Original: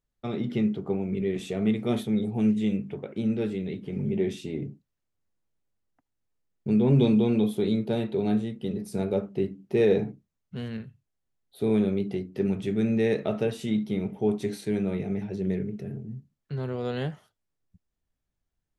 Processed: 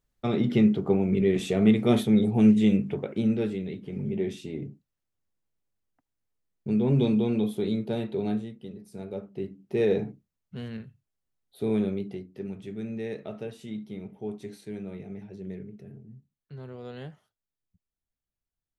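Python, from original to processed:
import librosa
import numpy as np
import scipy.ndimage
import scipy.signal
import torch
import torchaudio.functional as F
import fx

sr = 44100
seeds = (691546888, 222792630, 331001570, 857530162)

y = fx.gain(x, sr, db=fx.line((2.96, 5.0), (3.75, -2.5), (8.26, -2.5), (8.81, -12.5), (9.83, -2.5), (11.85, -2.5), (12.42, -10.0)))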